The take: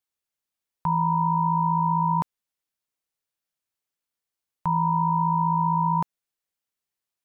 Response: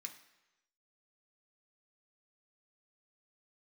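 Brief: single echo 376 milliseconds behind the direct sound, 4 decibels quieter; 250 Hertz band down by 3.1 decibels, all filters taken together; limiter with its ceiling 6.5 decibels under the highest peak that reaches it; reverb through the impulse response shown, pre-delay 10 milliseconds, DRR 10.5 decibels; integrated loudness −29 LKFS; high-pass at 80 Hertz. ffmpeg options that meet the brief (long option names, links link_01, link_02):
-filter_complex "[0:a]highpass=80,equalizer=frequency=250:width_type=o:gain=-7,alimiter=limit=-22dB:level=0:latency=1,aecho=1:1:376:0.631,asplit=2[link_01][link_02];[1:a]atrim=start_sample=2205,adelay=10[link_03];[link_02][link_03]afir=irnorm=-1:irlink=0,volume=-6dB[link_04];[link_01][link_04]amix=inputs=2:normalize=0,volume=2dB"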